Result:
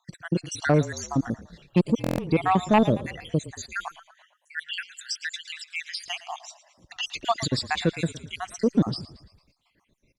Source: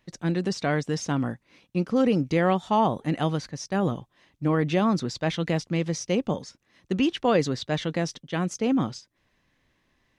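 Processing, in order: random spectral dropouts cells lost 69%; 3.88–6.06 elliptic high-pass 1600 Hz, stop band 60 dB; dynamic EQ 8000 Hz, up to +6 dB, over -56 dBFS, Q 0.97; rotary speaker horn 1 Hz, later 6.7 Hz, at 4.59; sine folder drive 5 dB, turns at -12 dBFS; frequency-shifting echo 0.113 s, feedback 51%, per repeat -30 Hz, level -16.5 dB; stuck buffer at 2.02, samples 1024, times 6; Opus 96 kbps 48000 Hz

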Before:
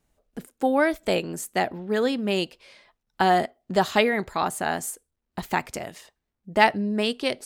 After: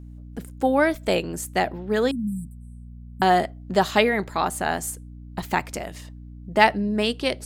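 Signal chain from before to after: hum 60 Hz, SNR 16 dB; 2.11–3.22 brick-wall FIR band-stop 280–7500 Hz; gain +1.5 dB

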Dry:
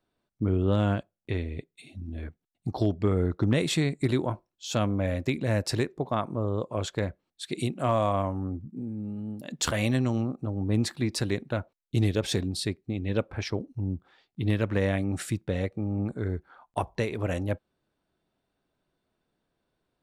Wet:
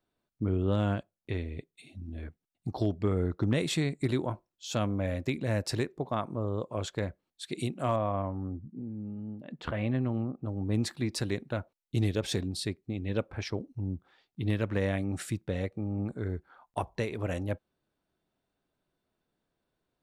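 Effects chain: 7.96–10.46 air absorption 470 m; gain -3.5 dB

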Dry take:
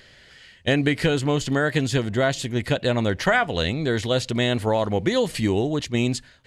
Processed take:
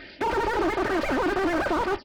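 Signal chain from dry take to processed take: half-waves squared off; limiter -17.5 dBFS, peak gain reduction 11 dB; envelope phaser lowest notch 300 Hz, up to 3600 Hz, full sweep at -20.5 dBFS; overdrive pedal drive 18 dB, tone 1300 Hz, clips at -14.5 dBFS; air absorption 360 m; wide varispeed 3.16×; high shelf 3200 Hz -8.5 dB; comb 3.3 ms, depth 50%; added harmonics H 3 -15 dB, 5 -12 dB, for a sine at -15 dBFS; downsampling 11025 Hz; slew limiter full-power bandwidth 44 Hz; gain +3 dB

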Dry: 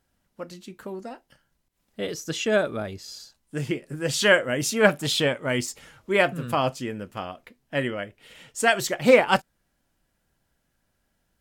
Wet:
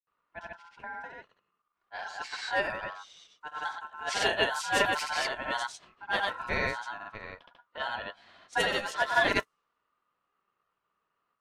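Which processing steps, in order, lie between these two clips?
ring modulator 1200 Hz; grains 0.173 s, grains 20/s, spray 0.1 s, pitch spread up and down by 0 st; low-pass opened by the level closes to 2800 Hz, open at -24.5 dBFS

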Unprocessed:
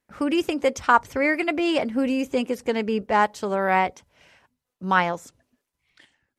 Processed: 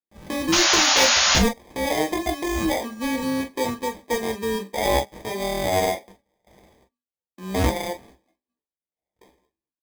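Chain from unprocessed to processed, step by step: low-pass opened by the level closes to 1900 Hz, open at -20.5 dBFS; gate with hold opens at -47 dBFS; HPF 240 Hz 24 dB/oct; notch 990 Hz, Q 8.6; dynamic EQ 3100 Hz, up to +4 dB, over -43 dBFS, Q 3.9; in parallel at +1 dB: compressor 16:1, threshold -43 dBFS, peak gain reduction 31 dB; on the sum: tempo 0.65×; sample-rate reducer 1400 Hz, jitter 0%; painted sound noise, 0.52–1.39, 530–7000 Hz -16 dBFS; on a send at -4 dB: reverb, pre-delay 7 ms; on the sum: gain -3.5 dB

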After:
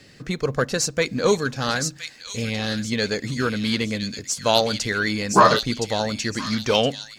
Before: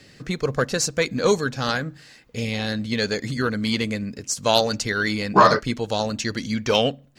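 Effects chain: thin delay 1.017 s, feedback 33%, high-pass 3000 Hz, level -3 dB

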